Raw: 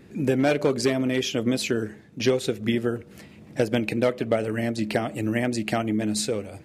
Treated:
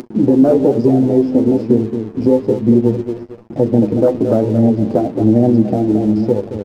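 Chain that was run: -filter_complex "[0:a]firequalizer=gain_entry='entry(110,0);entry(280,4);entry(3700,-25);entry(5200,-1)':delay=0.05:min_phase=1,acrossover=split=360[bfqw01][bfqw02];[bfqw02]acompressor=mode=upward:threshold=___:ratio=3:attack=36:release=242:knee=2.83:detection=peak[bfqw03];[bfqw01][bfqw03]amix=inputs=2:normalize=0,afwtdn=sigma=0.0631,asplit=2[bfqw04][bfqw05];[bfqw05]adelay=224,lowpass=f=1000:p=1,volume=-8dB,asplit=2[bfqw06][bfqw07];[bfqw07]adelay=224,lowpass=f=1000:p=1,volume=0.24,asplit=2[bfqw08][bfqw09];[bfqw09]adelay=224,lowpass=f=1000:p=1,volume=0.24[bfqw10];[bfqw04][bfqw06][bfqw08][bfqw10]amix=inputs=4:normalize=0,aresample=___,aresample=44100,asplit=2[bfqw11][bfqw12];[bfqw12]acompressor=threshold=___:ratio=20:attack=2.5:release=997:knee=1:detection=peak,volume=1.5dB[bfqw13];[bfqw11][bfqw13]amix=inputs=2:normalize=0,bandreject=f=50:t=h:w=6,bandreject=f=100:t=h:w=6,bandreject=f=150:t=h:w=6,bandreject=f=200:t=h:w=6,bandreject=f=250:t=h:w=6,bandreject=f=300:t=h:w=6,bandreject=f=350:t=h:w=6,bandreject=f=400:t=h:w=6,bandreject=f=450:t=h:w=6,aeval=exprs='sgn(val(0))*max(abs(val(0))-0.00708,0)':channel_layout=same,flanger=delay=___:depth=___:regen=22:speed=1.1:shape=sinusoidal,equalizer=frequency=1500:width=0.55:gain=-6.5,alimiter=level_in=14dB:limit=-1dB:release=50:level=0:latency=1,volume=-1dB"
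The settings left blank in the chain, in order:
-35dB, 11025, -27dB, 8.1, 3.6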